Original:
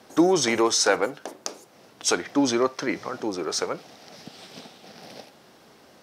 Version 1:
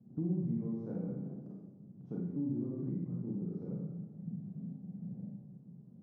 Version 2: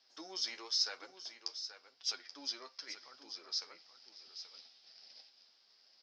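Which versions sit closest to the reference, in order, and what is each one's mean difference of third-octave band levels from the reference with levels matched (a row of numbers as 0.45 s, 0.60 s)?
2, 1; 10.0 dB, 17.5 dB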